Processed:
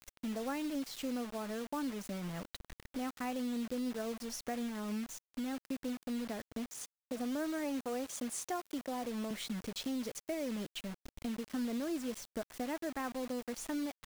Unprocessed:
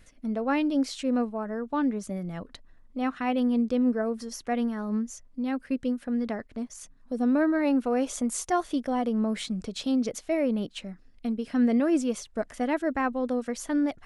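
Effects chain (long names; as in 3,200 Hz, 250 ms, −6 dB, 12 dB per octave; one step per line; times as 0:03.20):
0:06.66–0:09.31: high-pass filter 230 Hz 12 dB per octave
downward compressor 3 to 1, threshold −41 dBFS, peak gain reduction 16 dB
bit reduction 8 bits
level +1 dB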